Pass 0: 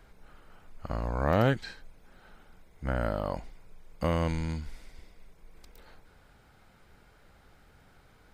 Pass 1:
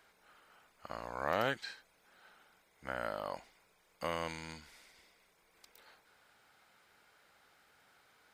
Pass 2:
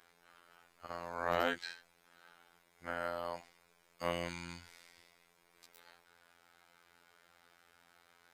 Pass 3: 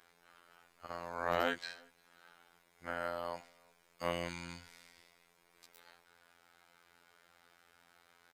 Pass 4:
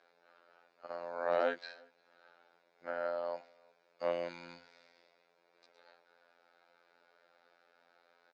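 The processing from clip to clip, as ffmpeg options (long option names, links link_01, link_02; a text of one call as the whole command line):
ffmpeg -i in.wav -af "highpass=frequency=1100:poles=1,volume=-1dB" out.wav
ffmpeg -i in.wav -af "afftfilt=real='hypot(re,im)*cos(PI*b)':imag='0':win_size=2048:overlap=0.75,volume=3.5dB" out.wav
ffmpeg -i in.wav -filter_complex "[0:a]asplit=2[link_01][link_02];[link_02]adelay=355.7,volume=-28dB,highshelf=frequency=4000:gain=-8[link_03];[link_01][link_03]amix=inputs=2:normalize=0" out.wav
ffmpeg -i in.wav -af "highpass=290,equalizer=frequency=560:width_type=q:width=4:gain=8,equalizer=frequency=1100:width_type=q:width=4:gain=-5,equalizer=frequency=2000:width_type=q:width=4:gain=-6,equalizer=frequency=3100:width_type=q:width=4:gain=-10,lowpass=frequency=4500:width=0.5412,lowpass=frequency=4500:width=1.3066" out.wav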